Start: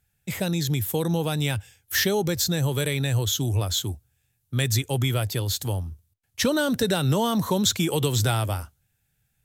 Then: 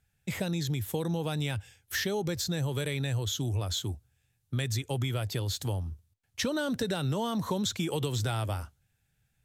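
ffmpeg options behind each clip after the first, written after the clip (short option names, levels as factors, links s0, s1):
-af "acompressor=threshold=0.0398:ratio=3,highshelf=f=11000:g=-12,volume=0.891"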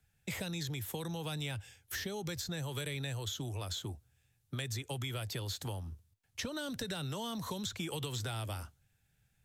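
-filter_complex "[0:a]acrossover=split=110|410|890|2300[s0][s1][s2][s3][s4];[s0]acompressor=threshold=0.00447:ratio=4[s5];[s1]acompressor=threshold=0.00631:ratio=4[s6];[s2]acompressor=threshold=0.00355:ratio=4[s7];[s3]acompressor=threshold=0.00398:ratio=4[s8];[s4]acompressor=threshold=0.00891:ratio=4[s9];[s5][s6][s7][s8][s9]amix=inputs=5:normalize=0"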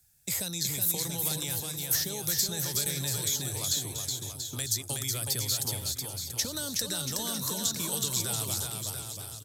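-filter_complex "[0:a]aexciter=amount=4.3:drive=7:freq=4100,asplit=2[s0][s1];[s1]aecho=0:1:370|684.5|951.8|1179|1372:0.631|0.398|0.251|0.158|0.1[s2];[s0][s2]amix=inputs=2:normalize=0"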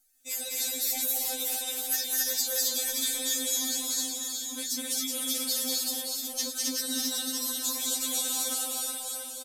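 -af "aecho=1:1:204.1|265.3:0.794|0.891,afftfilt=real='re*3.46*eq(mod(b,12),0)':imag='im*3.46*eq(mod(b,12),0)':win_size=2048:overlap=0.75"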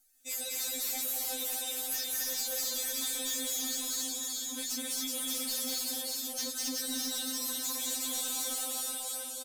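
-af "asoftclip=type=tanh:threshold=0.0299"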